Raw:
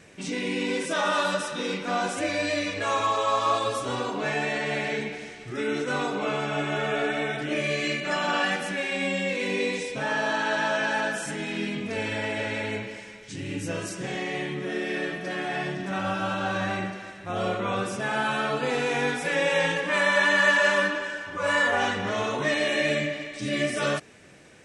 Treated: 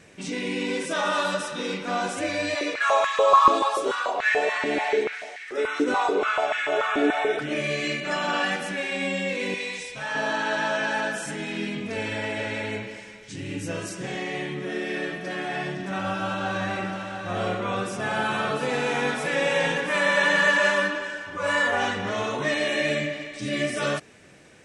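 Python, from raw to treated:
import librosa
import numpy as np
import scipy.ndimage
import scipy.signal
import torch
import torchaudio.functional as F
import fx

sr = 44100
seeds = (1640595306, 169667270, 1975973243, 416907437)

y = fx.filter_held_highpass(x, sr, hz=6.9, low_hz=300.0, high_hz=1800.0, at=(2.54, 7.39), fade=0.02)
y = fx.peak_eq(y, sr, hz=310.0, db=-14.5, octaves=1.8, at=(9.54, 10.15))
y = fx.echo_single(y, sr, ms=695, db=-7.0, at=(16.06, 20.71))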